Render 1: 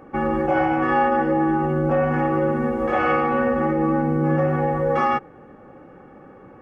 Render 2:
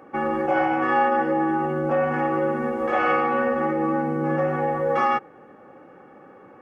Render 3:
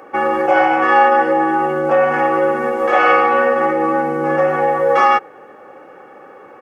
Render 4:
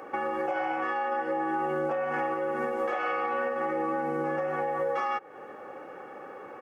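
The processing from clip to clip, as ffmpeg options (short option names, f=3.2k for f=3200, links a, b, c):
-af "highpass=f=340:p=1"
-af "firequalizer=gain_entry='entry(220,0);entry(420,10);entry(5200,14)':delay=0.05:min_phase=1,volume=-1.5dB"
-af "acompressor=threshold=-20dB:ratio=6,alimiter=limit=-17dB:level=0:latency=1:release=494,volume=-3.5dB"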